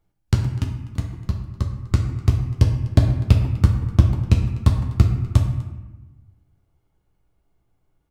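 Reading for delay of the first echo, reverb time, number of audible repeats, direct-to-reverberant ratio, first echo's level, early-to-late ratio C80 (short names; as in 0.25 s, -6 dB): 0.249 s, 1.1 s, 1, 2.0 dB, -20.0 dB, 8.0 dB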